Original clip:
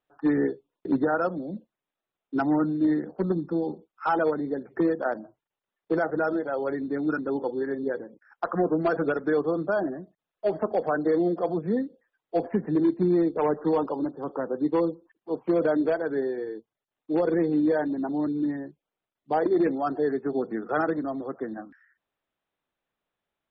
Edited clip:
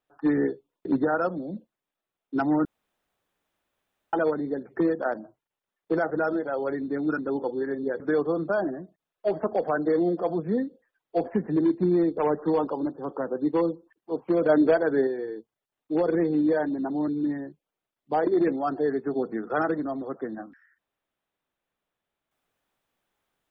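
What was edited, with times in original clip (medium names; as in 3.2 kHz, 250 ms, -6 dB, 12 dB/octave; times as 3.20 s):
2.65–4.13 s: room tone
8.00–9.19 s: delete
15.68–16.26 s: gain +4.5 dB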